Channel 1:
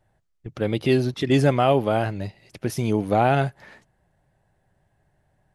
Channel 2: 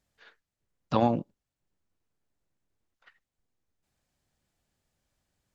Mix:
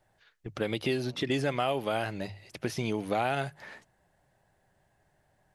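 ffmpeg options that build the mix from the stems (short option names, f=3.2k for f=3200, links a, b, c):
-filter_complex "[0:a]lowshelf=f=290:g=-7,bandreject=f=50:t=h:w=6,bandreject=f=100:t=h:w=6,bandreject=f=150:t=h:w=6,volume=1dB,asplit=2[a][b];[1:a]tiltshelf=f=1.2k:g=-5.5,acompressor=threshold=-31dB:ratio=6,volume=-9dB[c];[b]apad=whole_len=244406[d];[c][d]sidechaincompress=threshold=-29dB:ratio=8:attack=16:release=218[e];[a][e]amix=inputs=2:normalize=0,acrossover=split=1700|5500[f][g][h];[f]acompressor=threshold=-28dB:ratio=4[i];[g]acompressor=threshold=-36dB:ratio=4[j];[h]acompressor=threshold=-52dB:ratio=4[k];[i][j][k]amix=inputs=3:normalize=0"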